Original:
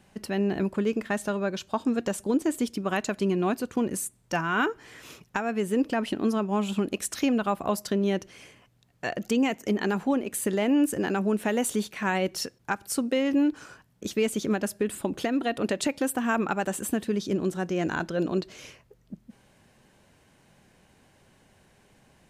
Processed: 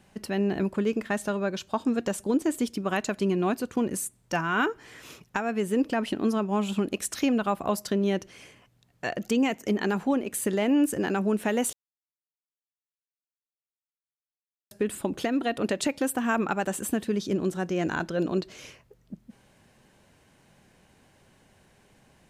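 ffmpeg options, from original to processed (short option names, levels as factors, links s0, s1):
-filter_complex "[0:a]asplit=3[s0][s1][s2];[s0]atrim=end=11.73,asetpts=PTS-STARTPTS,afade=t=out:st=11.726:d=0.004:c=hsin[s3];[s1]atrim=start=11.73:end=14.71,asetpts=PTS-STARTPTS,volume=0[s4];[s2]atrim=start=14.71,asetpts=PTS-STARTPTS,afade=t=in:d=0.004:c=hsin[s5];[s3][s4][s5]concat=n=3:v=0:a=1"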